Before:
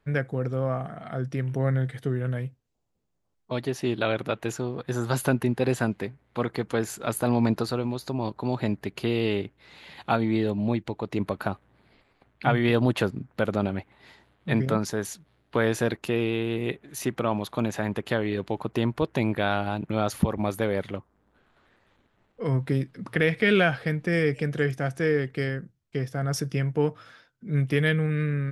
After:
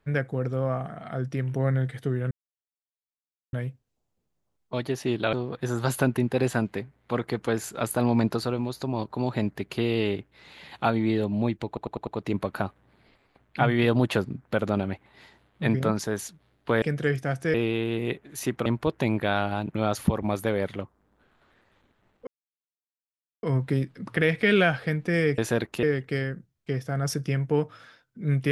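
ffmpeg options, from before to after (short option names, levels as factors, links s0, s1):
-filter_complex "[0:a]asplit=13[s0][s1][s2][s3][s4][s5][s6][s7][s8][s9][s10][s11][s12];[s0]atrim=end=2.31,asetpts=PTS-STARTPTS,afade=t=out:st=2.306:d=0.004:c=hsin,apad=pad_dur=1.22[s13];[s1]atrim=start=2.31:end=4.112,asetpts=PTS-STARTPTS,afade=t=in:d=0.004:c=hsin[s14];[s2]atrim=start=4.588:end=11.032[s15];[s3]atrim=start=10.928:end=11.032[s16];[s4]atrim=start=10.928:end=11.032[s17];[s5]atrim=start=10.928:end=11.032[s18];[s6]atrim=start=10.928:end=15.682[s19];[s7]atrim=start=24.368:end=25.092[s20];[s8]atrim=start=16.128:end=17.252[s21];[s9]atrim=start=18.808:end=22.42,asetpts=PTS-STARTPTS,afade=t=out:st=3.608:d=0.004:c=hsin,apad=pad_dur=1.16[s22];[s10]atrim=start=22.42:end=24.372,asetpts=PTS-STARTPTS,afade=t=in:d=0.004:c=hsin[s23];[s11]atrim=start=15.678:end=16.132[s24];[s12]atrim=start=25.088[s25];[s13][s14]concat=n=2:v=0:a=1[s26];[s26][s15]acrossfade=d=0.004:c1=hsin:c2=hsin[s27];[s27][s16]acrossfade=d=0.004:c1=hsin:c2=hsin[s28];[s28][s17]acrossfade=d=0.004:c1=hsin:c2=hsin[s29];[s29][s18]acrossfade=d=0.004:c1=hsin:c2=hsin[s30];[s30][s19]acrossfade=d=0.004:c1=hsin:c2=hsin[s31];[s31][s20]acrossfade=d=0.004:c1=hsin:c2=hsin[s32];[s32][s21]acrossfade=d=0.004:c1=hsin:c2=hsin[s33];[s22][s23]concat=n=2:v=0:a=1[s34];[s33][s34]acrossfade=d=0.004:c1=hsin:c2=hsin[s35];[s35][s24]acrossfade=d=0.004:c1=hsin:c2=hsin[s36];[s36][s25]acrossfade=d=0.004:c1=hsin:c2=hsin"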